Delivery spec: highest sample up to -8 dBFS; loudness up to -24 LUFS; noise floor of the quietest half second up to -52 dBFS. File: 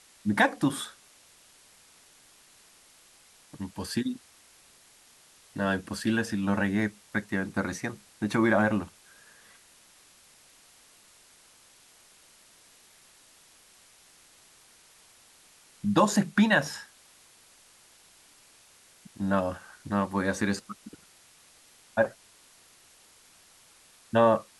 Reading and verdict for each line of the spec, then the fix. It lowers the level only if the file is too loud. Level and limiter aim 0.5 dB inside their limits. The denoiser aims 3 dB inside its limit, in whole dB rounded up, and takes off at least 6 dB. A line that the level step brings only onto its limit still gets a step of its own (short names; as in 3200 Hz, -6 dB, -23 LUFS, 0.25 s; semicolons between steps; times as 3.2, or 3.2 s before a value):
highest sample -10.5 dBFS: OK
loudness -28.0 LUFS: OK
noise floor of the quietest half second -58 dBFS: OK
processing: none